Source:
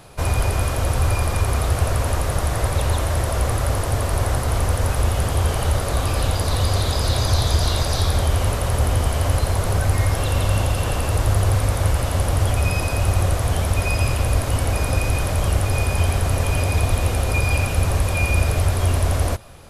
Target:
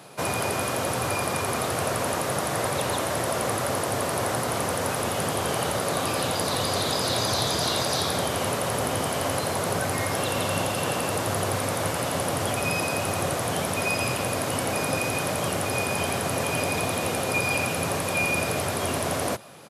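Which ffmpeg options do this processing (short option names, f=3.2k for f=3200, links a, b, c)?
-af "aresample=32000,aresample=44100,highpass=f=150:w=0.5412,highpass=f=150:w=1.3066"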